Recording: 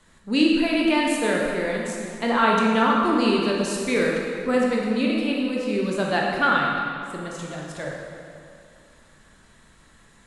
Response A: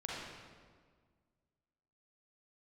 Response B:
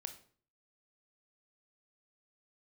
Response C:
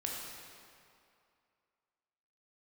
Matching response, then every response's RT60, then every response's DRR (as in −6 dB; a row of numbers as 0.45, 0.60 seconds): C; 1.7, 0.45, 2.5 seconds; −5.5, 7.5, −2.5 decibels